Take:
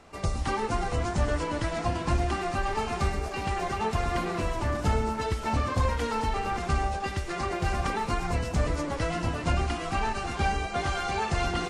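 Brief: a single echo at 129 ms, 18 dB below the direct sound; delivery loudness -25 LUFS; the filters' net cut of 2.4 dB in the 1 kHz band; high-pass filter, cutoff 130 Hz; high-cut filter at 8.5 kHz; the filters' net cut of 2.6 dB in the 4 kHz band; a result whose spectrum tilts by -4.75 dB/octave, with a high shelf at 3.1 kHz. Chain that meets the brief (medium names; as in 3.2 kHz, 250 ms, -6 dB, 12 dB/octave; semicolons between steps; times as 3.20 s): high-pass 130 Hz; low-pass 8.5 kHz; peaking EQ 1 kHz -3.5 dB; treble shelf 3.1 kHz +6 dB; peaking EQ 4 kHz -8 dB; delay 129 ms -18 dB; trim +7 dB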